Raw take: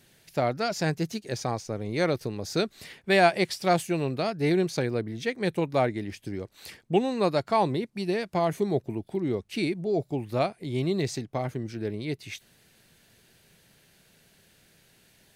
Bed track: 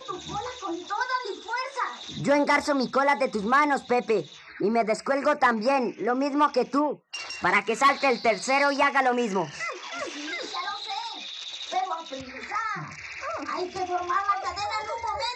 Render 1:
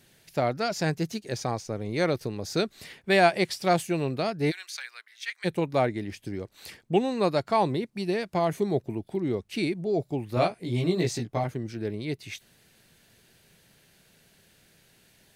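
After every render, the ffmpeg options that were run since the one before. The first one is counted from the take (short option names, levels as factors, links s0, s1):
-filter_complex "[0:a]asplit=3[s0][s1][s2];[s0]afade=t=out:st=4.5:d=0.02[s3];[s1]highpass=f=1400:w=0.5412,highpass=f=1400:w=1.3066,afade=t=in:st=4.5:d=0.02,afade=t=out:st=5.44:d=0.02[s4];[s2]afade=t=in:st=5.44:d=0.02[s5];[s3][s4][s5]amix=inputs=3:normalize=0,asettb=1/sr,asplit=3[s6][s7][s8];[s6]atrim=end=10.354[s9];[s7]atrim=start=10.35:end=11.44,asetpts=PTS-STARTPTS,afade=t=in:d=0.004:c=qsin,afade=t=out:st=1.086:d=0.004:c=qsin,asplit=2[s10][s11];[s11]adelay=17,volume=0.794[s12];[s10][s12]amix=inputs=2:normalize=0,atrim=end_sample=48069[s13];[s8]atrim=start=11.436[s14];[s9][s13]acrossfade=d=0.004:c1=hsin:c2=qsin[s15];[s15][s14]acrossfade=d=0.004:c1=qsin:c2=hsin"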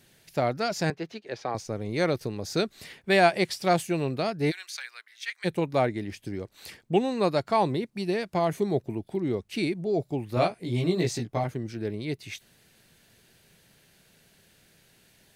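-filter_complex "[0:a]asettb=1/sr,asplit=3[s0][s1][s2];[s0]atrim=end=0.904[s3];[s1]atrim=start=0.9:end=1.55,asetpts=PTS-STARTPTS,afade=t=in:d=0.004:c=qsin,afade=t=out:st=0.646:d=0.004:c=qsin,acrossover=split=320 4000:gain=0.224 1 0.0708[s4][s5][s6];[s4][s5][s6]amix=inputs=3:normalize=0[s7];[s2]atrim=start=1.546[s8];[s3][s7]acrossfade=d=0.004:c1=hsin:c2=qsin[s9];[s9][s8]acrossfade=d=0.004:c1=qsin:c2=hsin"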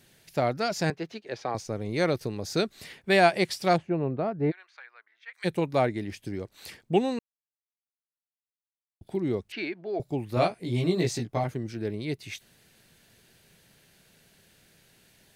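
-filter_complex "[0:a]asplit=3[s0][s1][s2];[s0]afade=t=out:st=3.76:d=0.02[s3];[s1]lowpass=1200,afade=t=in:st=3.76:d=0.02,afade=t=out:st=5.33:d=0.02[s4];[s2]afade=t=in:st=5.33:d=0.02[s5];[s3][s4][s5]amix=inputs=3:normalize=0,asettb=1/sr,asplit=3[s6][s7][s8];[s6]atrim=end=9.524[s9];[s7]atrim=start=9.52:end=10,asetpts=PTS-STARTPTS,afade=t=in:d=0.004:c=qsin,afade=t=out:st=0.476:d=0.004:c=qsin,highpass=420,equalizer=f=490:t=q:w=4:g=-6,equalizer=f=1600:t=q:w=4:g=8,equalizer=f=3700:t=q:w=4:g=-5,lowpass=f=4100:w=0.5412,lowpass=f=4100:w=1.3066[s10];[s8]atrim=start=9.996[s11];[s9][s10]acrossfade=d=0.004:c1=hsin:c2=qsin[s12];[s12][s11]acrossfade=d=0.004:c1=qsin:c2=hsin,asplit=3[s13][s14][s15];[s13]atrim=end=7.19,asetpts=PTS-STARTPTS,afade=t=out:st=7.186:d=0.004:c=hsin[s16];[s14]atrim=start=7.19:end=9.01,asetpts=PTS-STARTPTS,volume=0[s17];[s15]atrim=start=9.01,asetpts=PTS-STARTPTS,afade=t=in:d=0.004:c=hsin[s18];[s16][s17][s18]concat=n=3:v=0:a=1"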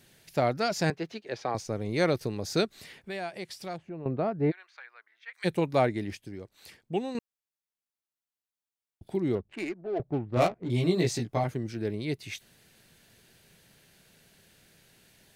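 -filter_complex "[0:a]asettb=1/sr,asplit=3[s0][s1][s2];[s0]atrim=end=2.654[s3];[s1]atrim=start=2.65:end=4.06,asetpts=PTS-STARTPTS,afade=t=in:d=0.004:c=qsin,afade=t=out:st=1.406:d=0.004:c=qsin,acompressor=threshold=0.00501:ratio=2:attack=3.2:release=140:knee=1:detection=peak[s4];[s2]atrim=start=4.056[s5];[s3][s4]acrossfade=d=0.004:c1=hsin:c2=qsin[s6];[s6][s5]acrossfade=d=0.004:c1=qsin:c2=hsin,asettb=1/sr,asplit=3[s7][s8][s9];[s7]atrim=end=9.354[s10];[s8]atrim=start=9.35:end=10.7,asetpts=PTS-STARTPTS,afade=t=in:d=0.004:c=qsin,afade=t=out:st=1.346:d=0.004:c=qsin,adynamicsmooth=sensitivity=4:basefreq=640[s11];[s9]atrim=start=10.696[s12];[s10][s11]acrossfade=d=0.004:c1=hsin:c2=qsin[s13];[s13][s12]acrossfade=d=0.004:c1=qsin:c2=hsin,asplit=3[s14][s15][s16];[s14]atrim=end=6.172[s17];[s15]atrim=start=6.168:end=7.152,asetpts=PTS-STARTPTS,volume=0.447[s18];[s16]atrim=start=7.148[s19];[s17][s18]acrossfade=d=0.004:c1=hsin:c2=hsin[s20];[s20][s19]acrossfade=d=0.004:c1=hsin:c2=hsin"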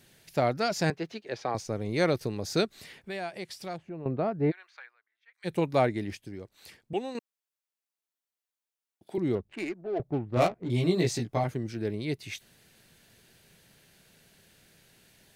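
-filter_complex "[0:a]asettb=1/sr,asplit=3[s0][s1][s2];[s0]atrim=end=6.934[s3];[s1]atrim=start=6.93:end=9.18,asetpts=PTS-STARTPTS,afade=t=in:d=0.004:c=qsin,afade=t=out:st=2.246:d=0.004:c=qsin,highpass=280[s4];[s2]atrim=start=9.176[s5];[s3][s4]acrossfade=d=0.004:c1=hsin:c2=qsin[s6];[s6][s5]acrossfade=d=0.004:c1=qsin:c2=hsin,asplit=3[s7][s8][s9];[s7]atrim=end=4.96,asetpts=PTS-STARTPTS,afade=t=out:st=4.83:d=0.13:silence=0.16788[s10];[s8]atrim=start=4.96:end=5.42,asetpts=PTS-STARTPTS,volume=0.168[s11];[s9]atrim=start=5.42,asetpts=PTS-STARTPTS,afade=t=in:d=0.13:silence=0.16788[s12];[s10][s11][s12]concat=n=3:v=0:a=1"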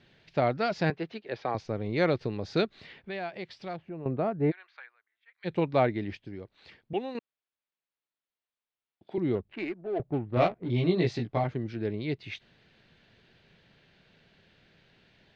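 -af "lowpass=f=4000:w=0.5412,lowpass=f=4000:w=1.3066"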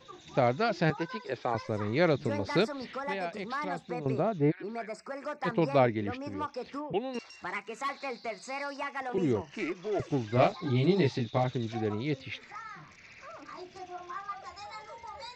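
-filter_complex "[1:a]volume=0.188[s0];[0:a][s0]amix=inputs=2:normalize=0"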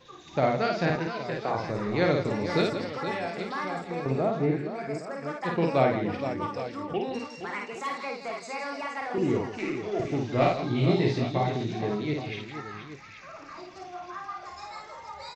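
-filter_complex "[0:a]asplit=2[s0][s1];[s1]adelay=29,volume=0.237[s2];[s0][s2]amix=inputs=2:normalize=0,asplit=2[s3][s4];[s4]aecho=0:1:53|165|470|817:0.708|0.282|0.335|0.224[s5];[s3][s5]amix=inputs=2:normalize=0"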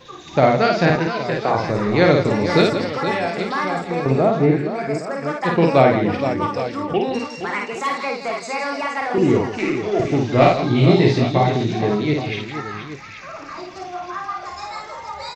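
-af "volume=3.16,alimiter=limit=0.891:level=0:latency=1"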